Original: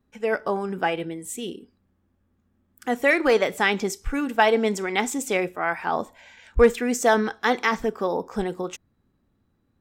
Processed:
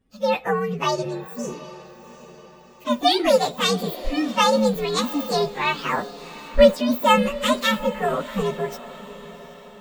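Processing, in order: inharmonic rescaling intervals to 130%; diffused feedback echo 0.749 s, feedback 48%, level -16 dB; gain +5 dB

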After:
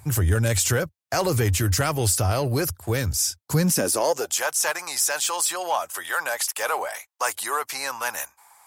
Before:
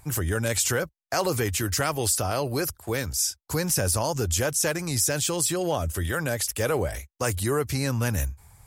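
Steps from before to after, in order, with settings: high-pass sweep 89 Hz -> 900 Hz, 3.34–4.41; in parallel at -8.5 dB: hard clip -25.5 dBFS, distortion -8 dB

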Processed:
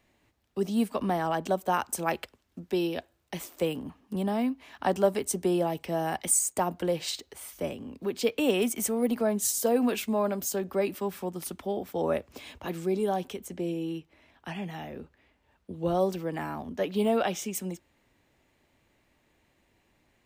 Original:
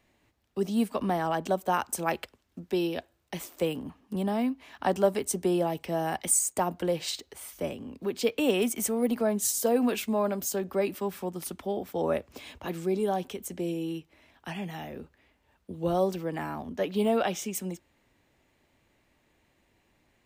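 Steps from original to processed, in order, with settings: 13.38–15.99 high shelf 4900 Hz -> 8200 Hz -6.5 dB

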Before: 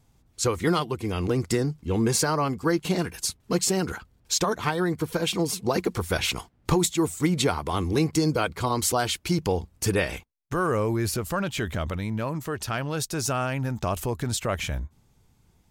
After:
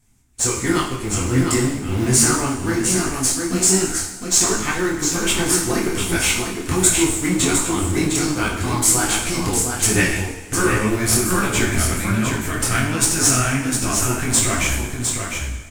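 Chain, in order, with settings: ten-band EQ 250 Hz +6 dB, 500 Hz -11 dB, 1000 Hz -4 dB, 2000 Hz +5 dB, 4000 Hz -6 dB, 8000 Hz +10 dB; in parallel at -5.5 dB: Schmitt trigger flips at -22 dBFS; on the sum: bell 160 Hz -12 dB 0.37 oct; reverb, pre-delay 3 ms, DRR -0.5 dB; vocal rider 2 s; echo 0.707 s -5.5 dB; detuned doubles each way 45 cents; gain +5 dB

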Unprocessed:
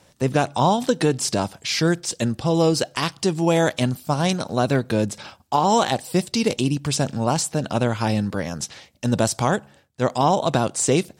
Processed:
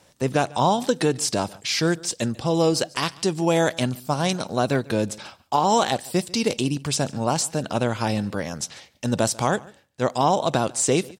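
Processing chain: tone controls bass -3 dB, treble +1 dB; echo 0.144 s -23 dB; gain -1 dB

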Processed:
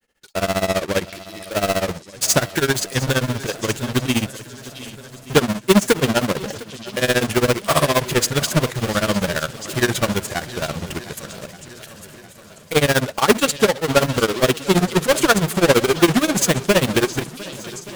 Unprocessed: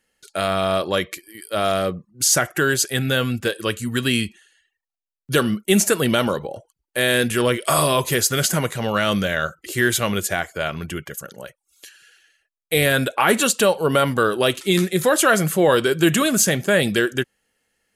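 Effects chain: half-waves squared off; delay with a stepping band-pass 0.689 s, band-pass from 4000 Hz, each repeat 0.7 oct, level -11 dB; in parallel at -6 dB: hard clip -18 dBFS, distortion -7 dB; on the sum: grains 81 ms, grains 15/s, spray 10 ms, pitch spread up and down by 0 st; on a send: swung echo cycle 1.176 s, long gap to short 1.5:1, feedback 49%, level -17 dB; on the sum: upward expander 1.5:1, over -16 dBFS

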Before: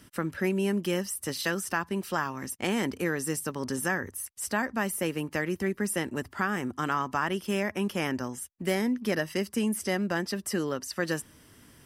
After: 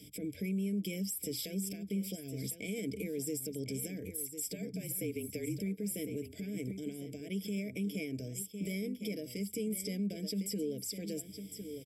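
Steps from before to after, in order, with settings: 4.34–5.57 frequency shift -42 Hz; HPF 85 Hz; compressor 4:1, threshold -32 dBFS, peak gain reduction 8.5 dB; ripple EQ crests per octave 1.7, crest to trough 15 dB; echo 1.054 s -12.5 dB; dynamic EQ 3800 Hz, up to -4 dB, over -53 dBFS, Q 0.71; limiter -27.5 dBFS, peak gain reduction 10 dB; elliptic band-stop 540–2300 Hz, stop band 50 dB

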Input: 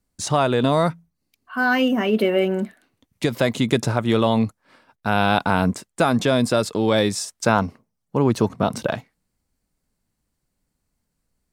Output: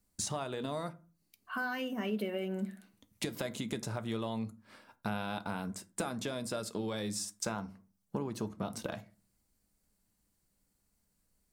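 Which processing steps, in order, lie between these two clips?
high shelf 6000 Hz +8.5 dB; compressor 6:1, threshold -31 dBFS, peak gain reduction 18.5 dB; on a send: reverb RT60 0.35 s, pre-delay 5 ms, DRR 10.5 dB; on the sum: gain -4 dB

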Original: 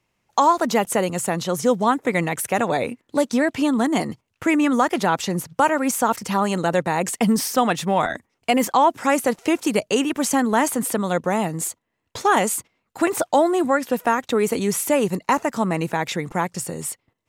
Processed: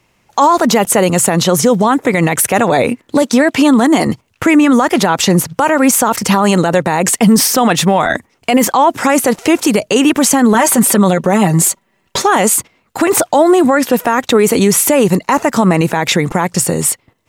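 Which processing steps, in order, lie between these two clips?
3.22–4.07 HPF 190 Hz 6 dB/oct; 10.54–12.22 comb 5.2 ms, depth 75%; maximiser +16 dB; gain -1 dB

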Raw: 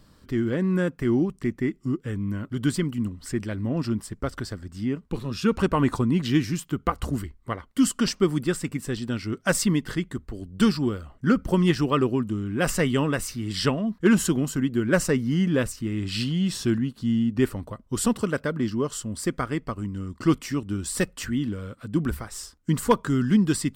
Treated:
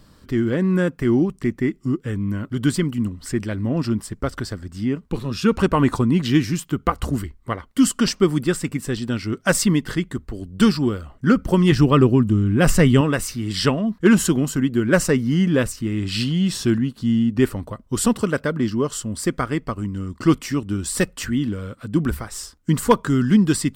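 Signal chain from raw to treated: 11.72–13.01 low shelf 190 Hz +11 dB; gain +4.5 dB

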